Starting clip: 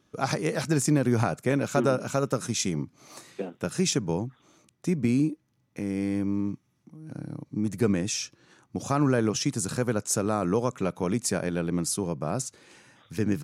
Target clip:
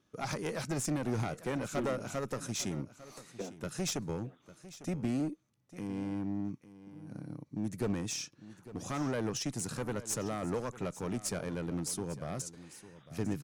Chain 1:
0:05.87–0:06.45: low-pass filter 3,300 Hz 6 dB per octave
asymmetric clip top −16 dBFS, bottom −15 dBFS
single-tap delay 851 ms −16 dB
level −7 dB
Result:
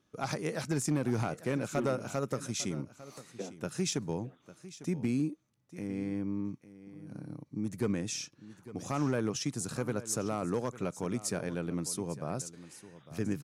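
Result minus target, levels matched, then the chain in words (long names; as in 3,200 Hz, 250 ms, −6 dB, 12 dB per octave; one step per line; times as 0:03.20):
asymmetric clip: distortion −12 dB
0:05.87–0:06.45: low-pass filter 3,300 Hz 6 dB per octave
asymmetric clip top −25.5 dBFS, bottom −15 dBFS
single-tap delay 851 ms −16 dB
level −7 dB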